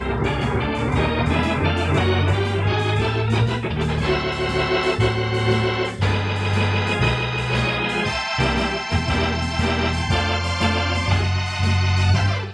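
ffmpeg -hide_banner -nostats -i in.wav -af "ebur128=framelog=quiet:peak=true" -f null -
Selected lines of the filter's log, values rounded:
Integrated loudness:
  I:         -20.6 LUFS
  Threshold: -30.6 LUFS
Loudness range:
  LRA:         0.6 LU
  Threshold: -40.6 LUFS
  LRA low:   -20.9 LUFS
  LRA high:  -20.3 LUFS
True peak:
  Peak:       -5.6 dBFS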